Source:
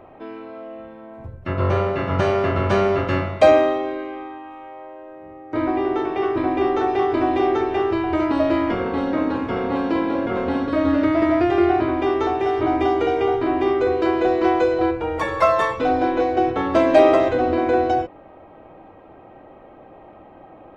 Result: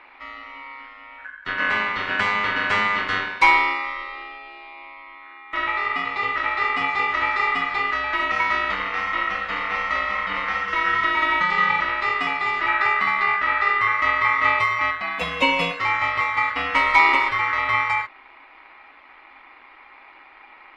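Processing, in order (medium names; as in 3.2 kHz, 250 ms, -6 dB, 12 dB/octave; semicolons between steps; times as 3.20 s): 12.68–14.59 s: tilt EQ -1.5 dB/octave; ring modulator 1.6 kHz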